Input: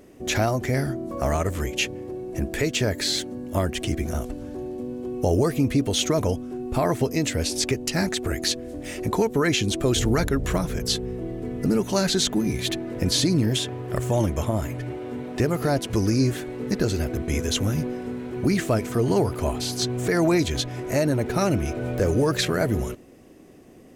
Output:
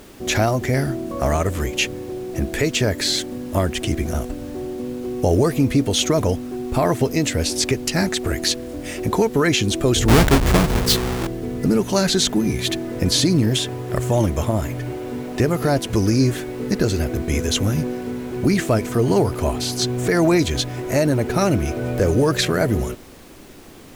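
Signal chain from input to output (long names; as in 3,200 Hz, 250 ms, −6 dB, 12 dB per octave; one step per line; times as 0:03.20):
0:10.08–0:11.27: each half-wave held at its own peak
background noise pink −50 dBFS
level +4 dB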